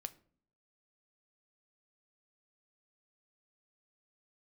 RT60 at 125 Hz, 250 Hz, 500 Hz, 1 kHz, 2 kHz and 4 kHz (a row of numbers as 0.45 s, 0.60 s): 0.75 s, 0.75 s, 0.60 s, 0.45 s, 0.35 s, 0.30 s